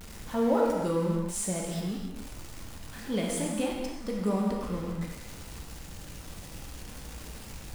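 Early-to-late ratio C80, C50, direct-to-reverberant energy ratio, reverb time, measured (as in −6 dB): 3.0 dB, 1.0 dB, −2.0 dB, non-exponential decay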